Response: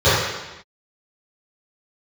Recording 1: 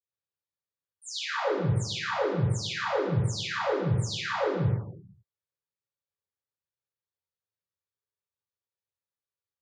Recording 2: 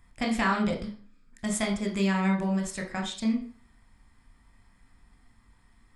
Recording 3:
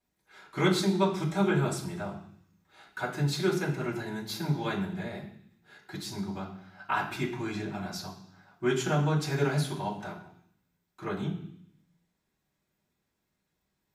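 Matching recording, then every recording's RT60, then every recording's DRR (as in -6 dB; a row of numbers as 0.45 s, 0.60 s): 1; no single decay rate, 0.40 s, 0.65 s; -17.0 dB, 1.0 dB, -10.0 dB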